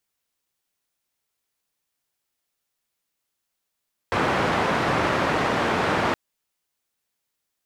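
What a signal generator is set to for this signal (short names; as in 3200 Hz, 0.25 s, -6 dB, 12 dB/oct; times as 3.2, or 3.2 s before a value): noise band 86–1300 Hz, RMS -22.5 dBFS 2.02 s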